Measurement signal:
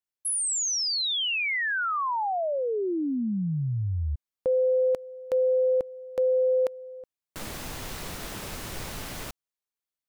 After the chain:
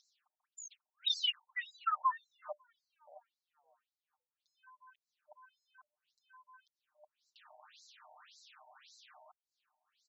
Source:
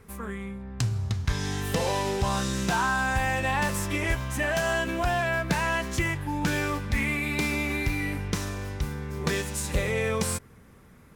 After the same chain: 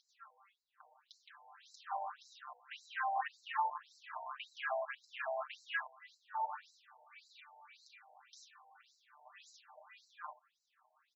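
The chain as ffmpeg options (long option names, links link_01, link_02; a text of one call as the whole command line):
ffmpeg -i in.wav -filter_complex "[0:a]acrossover=split=140[link_01][link_02];[link_02]acompressor=threshold=-35dB:ratio=2:attack=4.3:release=66:knee=2.83:detection=peak[link_03];[link_01][link_03]amix=inputs=2:normalize=0,aeval=exprs='clip(val(0),-1,0.0251)':channel_layout=same,highshelf=frequency=7500:gain=-8.5,bandreject=frequency=50:width_type=h:width=6,bandreject=frequency=100:width_type=h:width=6,bandreject=frequency=150:width_type=h:width=6,bandreject=frequency=200:width_type=h:width=6,bandreject=frequency=250:width_type=h:width=6,bandreject=frequency=300:width_type=h:width=6,afftfilt=real='re*(1-between(b*sr/4096,300,600))':imag='im*(1-between(b*sr/4096,300,600))':win_size=4096:overlap=0.75,acompressor=mode=upward:threshold=-48dB:ratio=4:attack=30:release=90:knee=2.83:detection=peak,equalizer=frequency=2100:width_type=o:width=0.27:gain=-11,afwtdn=0.0158,aecho=1:1:6.6:0.84,afftfilt=real='re*between(b*sr/1024,680*pow(5600/680,0.5+0.5*sin(2*PI*1.8*pts/sr))/1.41,680*pow(5600/680,0.5+0.5*sin(2*PI*1.8*pts/sr))*1.41)':imag='im*between(b*sr/1024,680*pow(5600/680,0.5+0.5*sin(2*PI*1.8*pts/sr))/1.41,680*pow(5600/680,0.5+0.5*sin(2*PI*1.8*pts/sr))*1.41)':win_size=1024:overlap=0.75,volume=3dB" out.wav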